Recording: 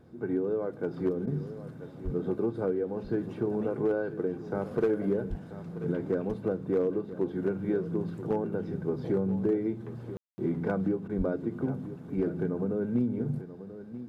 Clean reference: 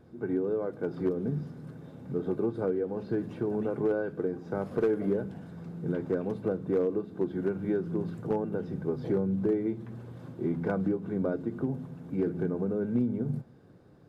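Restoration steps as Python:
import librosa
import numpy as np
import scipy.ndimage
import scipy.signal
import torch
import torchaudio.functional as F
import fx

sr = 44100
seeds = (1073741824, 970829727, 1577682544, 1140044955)

y = fx.highpass(x, sr, hz=140.0, slope=24, at=(2.04, 2.16), fade=0.02)
y = fx.highpass(y, sr, hz=140.0, slope=24, at=(5.29, 5.41), fade=0.02)
y = fx.highpass(y, sr, hz=140.0, slope=24, at=(11.17, 11.29), fade=0.02)
y = fx.fix_ambience(y, sr, seeds[0], print_start_s=13.43, print_end_s=13.93, start_s=10.17, end_s=10.38)
y = fx.fix_interpolate(y, sr, at_s=(1.26, 11.08), length_ms=11.0)
y = fx.fix_echo_inverse(y, sr, delay_ms=986, level_db=-13.5)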